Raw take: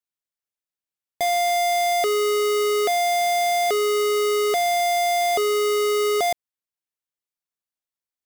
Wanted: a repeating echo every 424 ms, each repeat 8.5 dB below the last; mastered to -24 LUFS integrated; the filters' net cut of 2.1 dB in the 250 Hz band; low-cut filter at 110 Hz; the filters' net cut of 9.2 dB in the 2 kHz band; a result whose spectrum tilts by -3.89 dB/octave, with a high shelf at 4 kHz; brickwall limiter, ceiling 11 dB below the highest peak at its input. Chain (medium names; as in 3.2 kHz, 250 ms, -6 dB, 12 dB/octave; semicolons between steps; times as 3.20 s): high-pass 110 Hz; peaking EQ 250 Hz -5.5 dB; peaking EQ 2 kHz -8.5 dB; treble shelf 4 kHz -4 dB; peak limiter -30 dBFS; feedback delay 424 ms, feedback 38%, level -8.5 dB; trim +9 dB